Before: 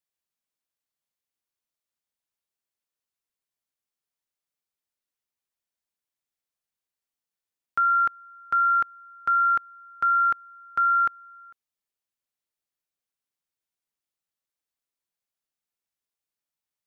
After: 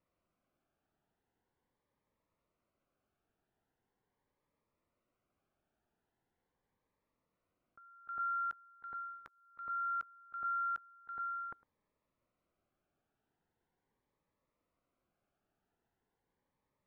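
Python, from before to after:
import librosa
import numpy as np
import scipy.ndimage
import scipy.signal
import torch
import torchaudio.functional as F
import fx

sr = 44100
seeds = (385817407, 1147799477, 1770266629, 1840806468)

y = scipy.signal.sosfilt(scipy.signal.butter(2, 1100.0, 'lowpass', fs=sr, output='sos'), x)
y = y + 10.0 ** (-20.0 / 20.0) * np.pad(y, (int(105 * sr / 1000.0), 0))[:len(y)]
y = fx.over_compress(y, sr, threshold_db=-51.0, ratio=-1.0)
y = fx.notch_cascade(y, sr, direction='rising', hz=0.41)
y = y * 10.0 ** (5.0 / 20.0)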